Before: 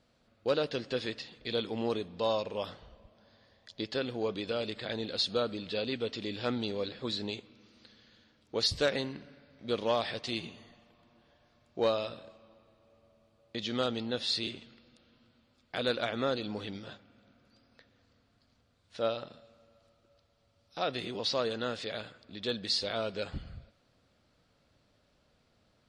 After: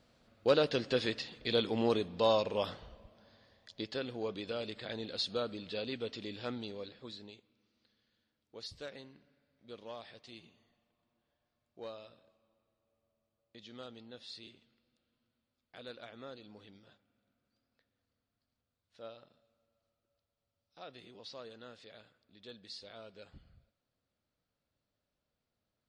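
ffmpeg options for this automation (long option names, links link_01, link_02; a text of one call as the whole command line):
ffmpeg -i in.wav -af "volume=2dB,afade=type=out:start_time=2.77:duration=1.21:silence=0.446684,afade=type=out:start_time=6.13:duration=1.25:silence=0.251189" out.wav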